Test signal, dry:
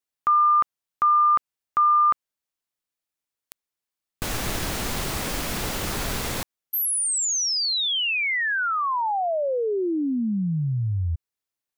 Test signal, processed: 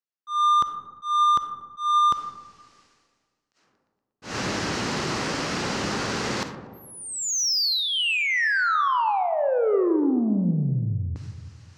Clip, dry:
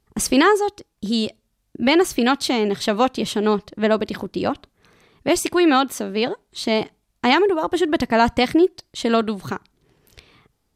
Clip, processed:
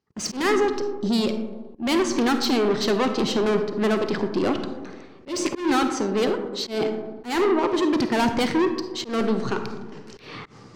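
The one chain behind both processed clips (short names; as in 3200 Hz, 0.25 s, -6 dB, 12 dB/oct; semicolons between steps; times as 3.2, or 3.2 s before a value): gate with hold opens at -46 dBFS, hold 60 ms, range -13 dB; dynamic EQ 400 Hz, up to +3 dB, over -32 dBFS, Q 3.6; reverse; upward compressor, threshold -25 dBFS; reverse; speaker cabinet 140–6100 Hz, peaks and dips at 660 Hz -5 dB, 2300 Hz -3 dB, 3500 Hz -6 dB; soft clip -22.5 dBFS; on a send: tape echo 0.117 s, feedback 60%, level -23 dB, low-pass 4800 Hz; on the sum: digital reverb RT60 1.5 s, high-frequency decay 0.25×, pre-delay 10 ms, DRR 7 dB; auto swell 0.167 s; gain +4 dB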